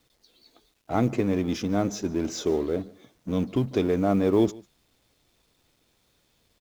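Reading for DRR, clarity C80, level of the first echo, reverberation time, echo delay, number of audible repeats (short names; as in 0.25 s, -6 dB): none, none, -23.0 dB, none, 0.147 s, 1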